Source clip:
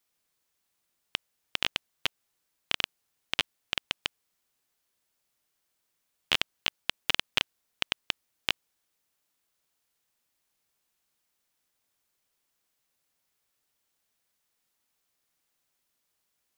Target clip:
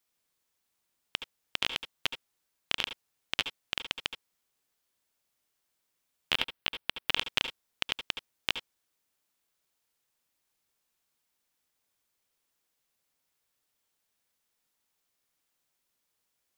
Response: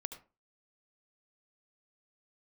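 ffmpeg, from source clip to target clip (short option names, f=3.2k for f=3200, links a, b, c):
-filter_complex "[0:a]asettb=1/sr,asplit=3[a][b][c];[a]atrim=end=6.324[d];[b]atrim=start=6.32:end=7.12,asetpts=PTS-STARTPTS,afade=t=in:d=0.004:c=qsin,afade=t=out:st=0.796:d=0.004:c=qsin,equalizer=f=6.7k:w=1.6:g=-9[e];[c]atrim=start=7.116[f];[d][e]acrossfade=d=0.004:c1=hsin:c2=qsin[g];[g][f]acrossfade=d=0.004:c1=qsin:c2=hsin[h];[1:a]atrim=start_sample=2205,atrim=end_sample=3969[i];[h][i]afir=irnorm=-1:irlink=0,volume=1dB"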